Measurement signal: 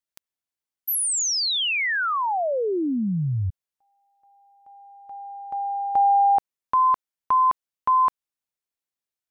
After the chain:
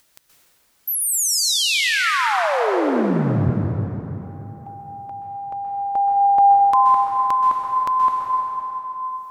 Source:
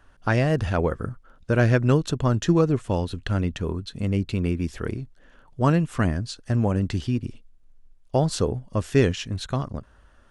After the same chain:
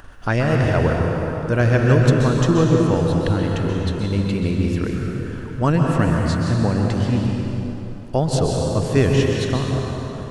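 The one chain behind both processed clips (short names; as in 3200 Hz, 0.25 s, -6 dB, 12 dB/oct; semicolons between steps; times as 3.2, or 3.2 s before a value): gate -53 dBFS, range -18 dB; upward compressor, threshold -28 dBFS; plate-style reverb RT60 3.5 s, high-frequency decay 0.7×, pre-delay 0.115 s, DRR -1 dB; gain +1.5 dB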